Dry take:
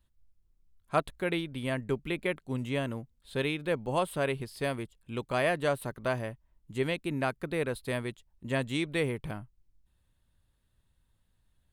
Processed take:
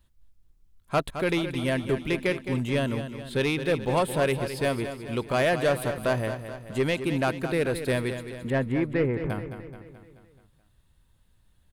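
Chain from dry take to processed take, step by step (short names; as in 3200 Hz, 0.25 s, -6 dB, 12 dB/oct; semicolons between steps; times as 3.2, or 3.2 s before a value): 8.5–9.3 LPF 1900 Hz 24 dB/oct; soft clip -23.5 dBFS, distortion -15 dB; on a send: feedback echo 0.215 s, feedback 54%, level -10 dB; on the sum: gain +7 dB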